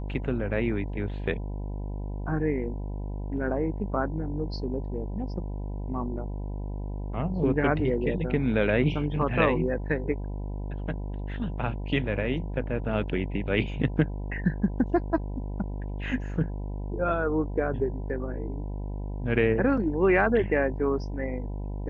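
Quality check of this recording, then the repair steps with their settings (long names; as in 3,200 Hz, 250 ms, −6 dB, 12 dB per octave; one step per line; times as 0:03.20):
mains buzz 50 Hz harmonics 20 −33 dBFS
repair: hum removal 50 Hz, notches 20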